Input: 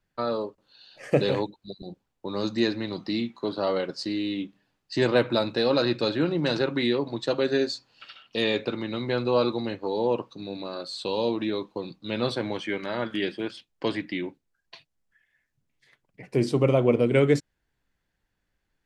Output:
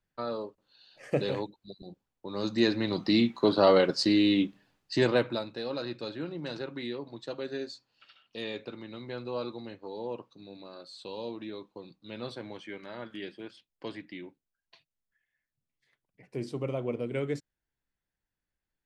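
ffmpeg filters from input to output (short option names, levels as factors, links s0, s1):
-af "volume=1.88,afade=t=in:st=2.29:d=1.08:silence=0.251189,afade=t=out:st=4.43:d=0.61:silence=0.421697,afade=t=out:st=5.04:d=0.42:silence=0.316228"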